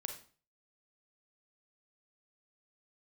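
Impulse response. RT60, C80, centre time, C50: 0.40 s, 12.5 dB, 17 ms, 7.0 dB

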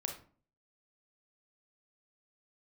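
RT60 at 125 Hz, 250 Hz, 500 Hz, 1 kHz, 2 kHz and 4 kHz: 0.60 s, 0.55 s, 0.45 s, 0.40 s, 0.35 s, 0.25 s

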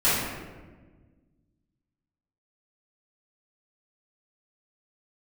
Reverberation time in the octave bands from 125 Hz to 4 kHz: 2.2 s, 2.1 s, 1.6 s, 1.2 s, 1.1 s, 0.80 s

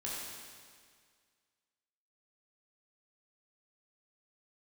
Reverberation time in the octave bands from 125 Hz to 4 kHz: 1.9 s, 1.9 s, 1.9 s, 1.9 s, 1.9 s, 1.9 s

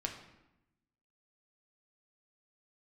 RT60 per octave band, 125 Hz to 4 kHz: 1.2 s, 1.2 s, 0.90 s, 0.90 s, 0.85 s, 0.70 s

